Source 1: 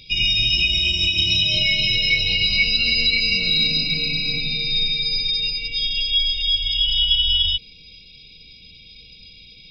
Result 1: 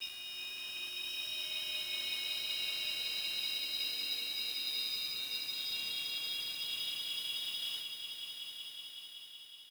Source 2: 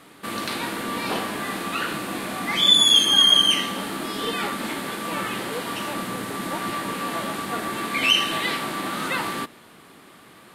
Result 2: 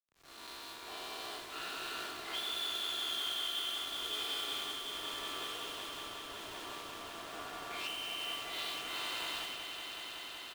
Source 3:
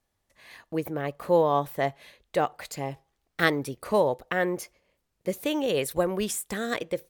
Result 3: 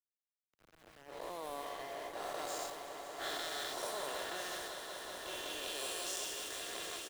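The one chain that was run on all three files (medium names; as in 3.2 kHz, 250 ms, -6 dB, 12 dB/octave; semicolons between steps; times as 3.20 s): every event in the spectrogram widened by 480 ms; level-controlled noise filter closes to 600 Hz, open at -11.5 dBFS; high-pass 300 Hz 12 dB/octave; differentiator; comb 2.9 ms, depth 49%; low-pass that closes with the level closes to 2 kHz, closed at -18.5 dBFS; FFT filter 430 Hz 0 dB, 1.4 kHz -8 dB, 2.1 kHz -15 dB, 3.3 kHz -6 dB; compression 6:1, threshold -38 dBFS; small samples zeroed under -44.5 dBFS; echo with a slow build-up 187 ms, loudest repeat 5, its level -9 dB; three bands expanded up and down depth 70%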